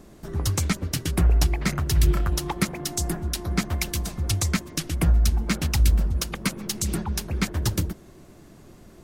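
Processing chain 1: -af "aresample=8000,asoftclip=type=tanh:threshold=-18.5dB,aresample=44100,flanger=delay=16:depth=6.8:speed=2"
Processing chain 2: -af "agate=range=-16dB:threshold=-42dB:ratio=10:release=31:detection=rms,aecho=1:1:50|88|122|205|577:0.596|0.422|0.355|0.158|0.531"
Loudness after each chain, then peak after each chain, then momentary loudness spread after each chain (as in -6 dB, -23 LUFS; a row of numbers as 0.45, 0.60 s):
-31.0, -22.0 LUFS; -18.5, -4.5 dBFS; 7, 10 LU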